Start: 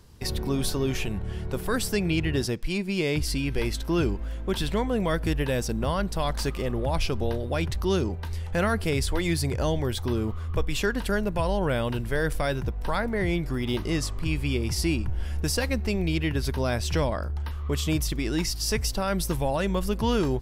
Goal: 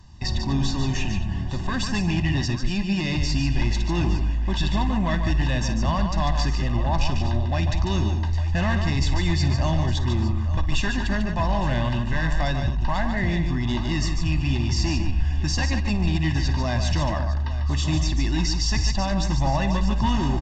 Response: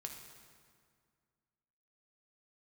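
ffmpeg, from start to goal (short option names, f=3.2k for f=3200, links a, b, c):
-filter_complex "[0:a]asoftclip=type=hard:threshold=-21.5dB,aresample=16000,aresample=44100,aecho=1:1:1.1:1,asplit=2[a][b];[b]aecho=0:1:51|58|146|233|860:0.133|0.141|0.447|0.112|0.188[c];[a][c]amix=inputs=2:normalize=0" -ar 48000 -c:a libvorbis -b:a 96k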